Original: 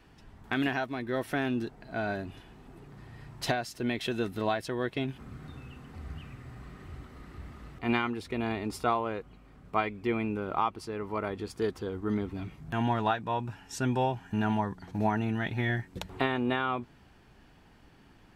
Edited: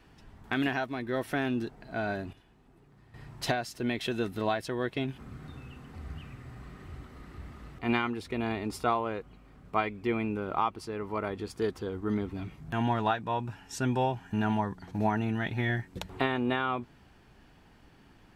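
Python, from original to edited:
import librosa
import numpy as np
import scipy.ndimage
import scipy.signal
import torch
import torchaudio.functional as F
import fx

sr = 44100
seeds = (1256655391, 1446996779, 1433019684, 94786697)

y = fx.edit(x, sr, fx.clip_gain(start_s=2.33, length_s=0.81, db=-10.0), tone=tone)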